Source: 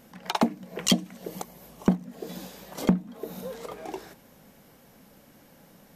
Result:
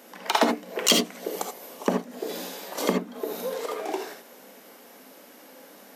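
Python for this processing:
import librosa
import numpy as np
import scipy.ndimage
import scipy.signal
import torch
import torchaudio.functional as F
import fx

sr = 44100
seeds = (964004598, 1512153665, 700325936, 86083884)

y = fx.diode_clip(x, sr, knee_db=-21.5)
y = scipy.signal.sosfilt(scipy.signal.butter(4, 290.0, 'highpass', fs=sr, output='sos'), y)
y = fx.rev_gated(y, sr, seeds[0], gate_ms=100, shape='rising', drr_db=3.0)
y = F.gain(torch.from_numpy(y), 6.5).numpy()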